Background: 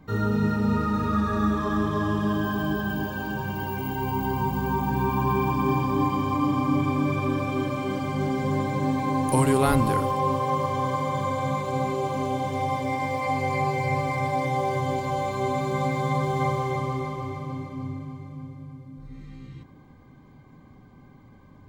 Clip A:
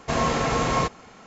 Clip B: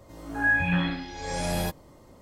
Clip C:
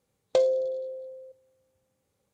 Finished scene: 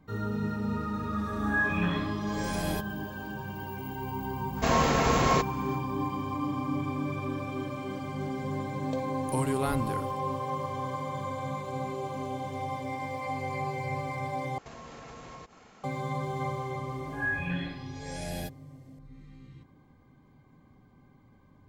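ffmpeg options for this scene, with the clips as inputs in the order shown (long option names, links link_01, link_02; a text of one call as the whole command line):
ffmpeg -i bed.wav -i cue0.wav -i cue1.wav -i cue2.wav -filter_complex "[2:a]asplit=2[link_01][link_02];[1:a]asplit=2[link_03][link_04];[0:a]volume=-8dB[link_05];[link_04]acompressor=threshold=-36dB:ratio=6:attack=3.2:release=140:knee=1:detection=peak[link_06];[link_02]asuperstop=centerf=1100:order=12:qfactor=1.8[link_07];[link_05]asplit=2[link_08][link_09];[link_08]atrim=end=14.584[link_10];[link_06]atrim=end=1.26,asetpts=PTS-STARTPTS,volume=-7.5dB[link_11];[link_09]atrim=start=15.836[link_12];[link_01]atrim=end=2.21,asetpts=PTS-STARTPTS,volume=-5dB,afade=type=in:duration=0.004:curve=hsin,afade=type=out:start_time=2.206:duration=0.004:curve=hsin,adelay=1100[link_13];[link_03]atrim=end=1.26,asetpts=PTS-STARTPTS,volume=-1.5dB,afade=type=in:duration=0.05,afade=type=out:start_time=1.21:duration=0.05,adelay=4540[link_14];[3:a]atrim=end=2.33,asetpts=PTS-STARTPTS,volume=-13.5dB,afade=type=in:duration=0.004:curve=hsin,afade=type=out:start_time=2.326:duration=0.004:curve=hsin,adelay=378378S[link_15];[link_07]atrim=end=2.21,asetpts=PTS-STARTPTS,volume=-8dB,afade=type=in:duration=0.004:curve=hsin,afade=type=out:start_time=2.206:duration=0.004:curve=hsin,adelay=16780[link_16];[link_10][link_11]acrossfade=duration=0.004:curve1=hsin:curve2=hsin[link_17];[link_17][link_12]acrossfade=duration=0.004:curve1=hsin:curve2=hsin[link_18];[link_18][link_13][link_14][link_15][link_16]amix=inputs=5:normalize=0" out.wav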